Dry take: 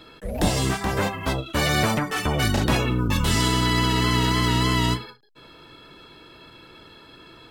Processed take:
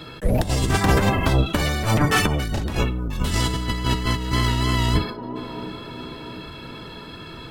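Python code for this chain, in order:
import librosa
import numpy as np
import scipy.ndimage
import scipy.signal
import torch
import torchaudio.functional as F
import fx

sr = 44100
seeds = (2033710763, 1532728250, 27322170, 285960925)

y = fx.octave_divider(x, sr, octaves=1, level_db=3.0)
y = fx.echo_wet_bandpass(y, sr, ms=699, feedback_pct=52, hz=440.0, wet_db=-14.5)
y = fx.over_compress(y, sr, threshold_db=-22.0, ratio=-0.5)
y = y * 10.0 ** (3.0 / 20.0)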